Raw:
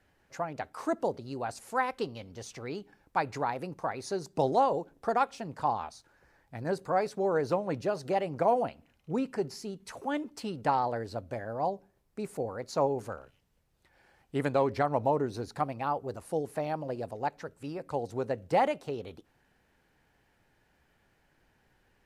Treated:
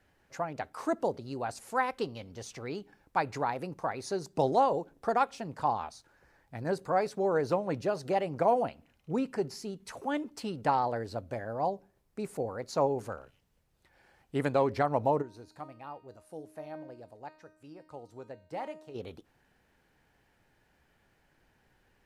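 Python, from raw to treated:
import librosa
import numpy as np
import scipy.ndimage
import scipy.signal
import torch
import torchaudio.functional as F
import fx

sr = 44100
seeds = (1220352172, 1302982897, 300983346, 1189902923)

y = fx.comb_fb(x, sr, f0_hz=310.0, decay_s=0.62, harmonics='all', damping=0.0, mix_pct=80, at=(15.21, 18.94), fade=0.02)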